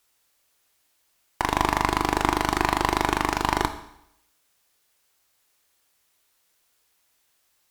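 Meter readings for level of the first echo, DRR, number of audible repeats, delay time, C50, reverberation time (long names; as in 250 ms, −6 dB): no echo audible, 8.5 dB, no echo audible, no echo audible, 11.5 dB, 0.80 s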